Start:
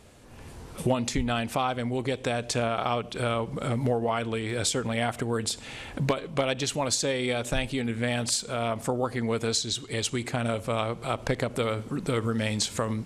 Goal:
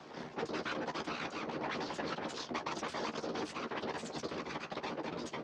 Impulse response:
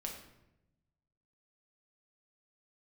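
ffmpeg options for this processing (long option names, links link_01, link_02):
-filter_complex "[0:a]lowshelf=frequency=500:gain=5.5,areverse,acompressor=threshold=-33dB:ratio=20,areverse,aeval=exprs='max(val(0),0)':channel_layout=same,afftfilt=real='hypot(re,im)*cos(2*PI*random(0))':imag='hypot(re,im)*sin(2*PI*random(1))':win_size=512:overlap=0.75,afreqshift=23,atempo=1.2,highpass=frequency=170:width_type=q:width=0.5412,highpass=frequency=170:width_type=q:width=1.307,lowpass=frequency=3000:width_type=q:width=0.5176,lowpass=frequency=3000:width_type=q:width=0.7071,lowpass=frequency=3000:width_type=q:width=1.932,afreqshift=-58,asplit=2[link_01][link_02];[link_02]adelay=26,volume=-7dB[link_03];[link_01][link_03]amix=inputs=2:normalize=0,asetrate=88200,aresample=44100,volume=10dB"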